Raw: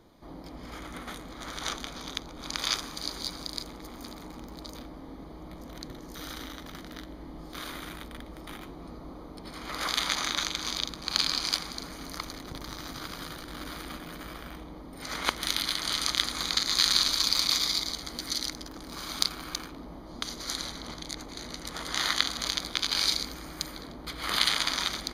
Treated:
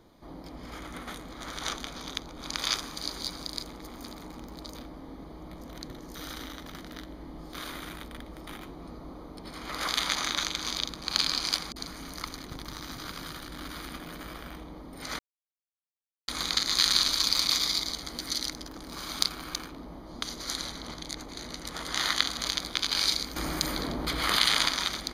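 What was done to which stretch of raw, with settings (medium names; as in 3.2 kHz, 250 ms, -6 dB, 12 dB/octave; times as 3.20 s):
11.72–13.96 s: bands offset in time lows, highs 40 ms, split 570 Hz
15.19–16.28 s: mute
23.36–24.69 s: level flattener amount 50%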